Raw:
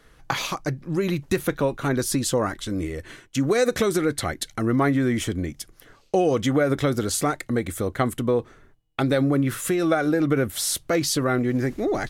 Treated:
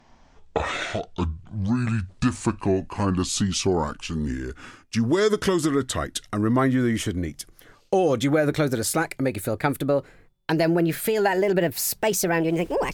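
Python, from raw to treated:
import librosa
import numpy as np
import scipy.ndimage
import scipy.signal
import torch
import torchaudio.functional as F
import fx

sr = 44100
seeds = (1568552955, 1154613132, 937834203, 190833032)

y = fx.speed_glide(x, sr, from_pct=52, to_pct=135)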